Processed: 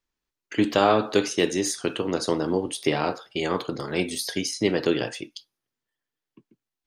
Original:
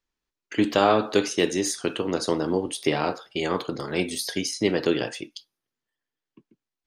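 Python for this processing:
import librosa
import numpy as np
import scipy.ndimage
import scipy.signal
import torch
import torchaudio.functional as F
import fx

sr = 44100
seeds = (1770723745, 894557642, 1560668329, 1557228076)

y = fx.peak_eq(x, sr, hz=120.0, db=2.5, octaves=0.34)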